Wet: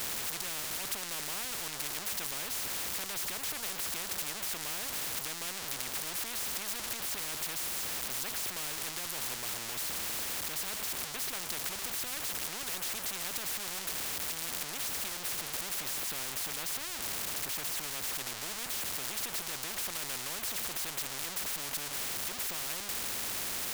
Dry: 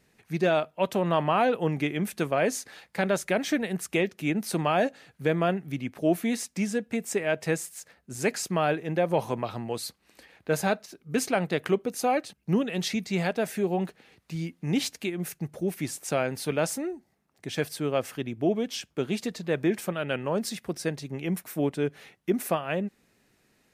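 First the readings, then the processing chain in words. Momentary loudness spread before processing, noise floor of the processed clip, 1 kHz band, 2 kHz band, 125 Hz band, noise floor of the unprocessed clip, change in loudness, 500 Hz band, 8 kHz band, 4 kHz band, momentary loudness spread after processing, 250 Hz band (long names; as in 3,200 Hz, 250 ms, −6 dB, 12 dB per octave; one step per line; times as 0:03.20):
9 LU, −41 dBFS, −11.5 dB, −5.5 dB, −19.5 dB, −69 dBFS, −5.0 dB, −20.5 dB, +4.5 dB, +2.0 dB, 2 LU, −22.0 dB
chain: converter with a step at zero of −28 dBFS
every bin compressed towards the loudest bin 10 to 1
level −8 dB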